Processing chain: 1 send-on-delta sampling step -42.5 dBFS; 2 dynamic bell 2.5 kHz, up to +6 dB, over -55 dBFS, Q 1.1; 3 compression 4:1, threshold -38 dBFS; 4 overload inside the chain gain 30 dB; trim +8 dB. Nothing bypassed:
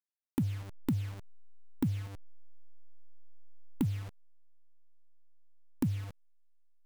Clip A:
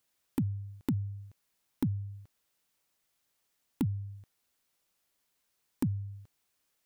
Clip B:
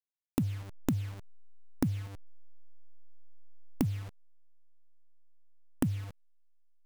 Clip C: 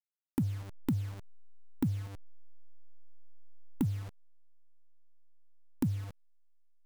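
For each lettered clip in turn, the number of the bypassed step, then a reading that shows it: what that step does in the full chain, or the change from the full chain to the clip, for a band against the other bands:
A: 1, distortion -19 dB; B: 4, distortion -14 dB; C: 2, 4 kHz band -2.0 dB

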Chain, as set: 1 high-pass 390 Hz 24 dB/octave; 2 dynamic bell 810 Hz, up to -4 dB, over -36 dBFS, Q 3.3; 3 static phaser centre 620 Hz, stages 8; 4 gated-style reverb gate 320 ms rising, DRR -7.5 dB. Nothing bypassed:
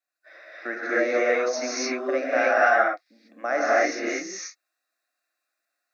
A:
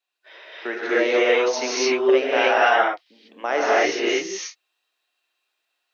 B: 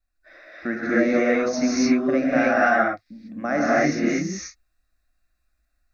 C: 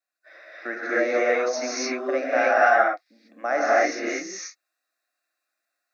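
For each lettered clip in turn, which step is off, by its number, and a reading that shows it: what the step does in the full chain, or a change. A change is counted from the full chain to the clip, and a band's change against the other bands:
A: 3, 4 kHz band +6.5 dB; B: 1, 250 Hz band +12.0 dB; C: 2, 1 kHz band +2.0 dB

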